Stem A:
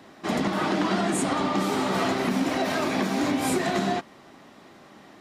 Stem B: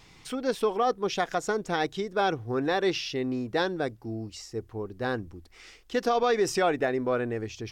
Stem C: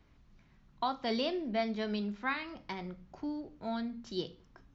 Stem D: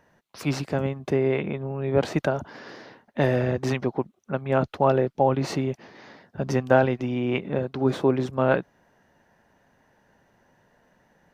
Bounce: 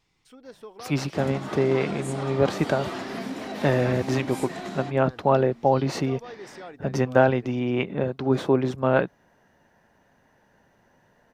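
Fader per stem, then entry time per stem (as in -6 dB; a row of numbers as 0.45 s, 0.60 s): -9.5 dB, -17.0 dB, -7.0 dB, +0.5 dB; 0.90 s, 0.00 s, 1.60 s, 0.45 s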